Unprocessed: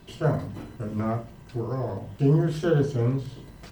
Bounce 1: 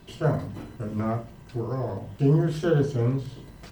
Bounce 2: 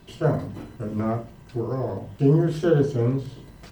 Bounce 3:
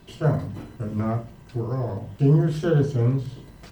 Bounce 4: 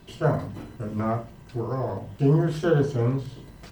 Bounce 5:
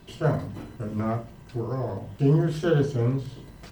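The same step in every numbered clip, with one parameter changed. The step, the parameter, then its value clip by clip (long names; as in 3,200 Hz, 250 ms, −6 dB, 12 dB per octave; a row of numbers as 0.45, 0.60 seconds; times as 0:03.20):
dynamic equaliser, frequency: 8,200, 370, 120, 970, 3,000 Hertz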